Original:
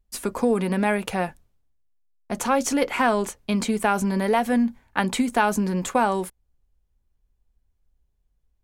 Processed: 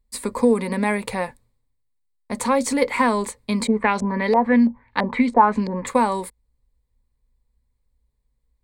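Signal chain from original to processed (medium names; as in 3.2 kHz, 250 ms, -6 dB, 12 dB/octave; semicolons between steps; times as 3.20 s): rippled EQ curve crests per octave 0.97, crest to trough 10 dB; 3.67–5.87 s: LFO low-pass saw up 3 Hz 560–5700 Hz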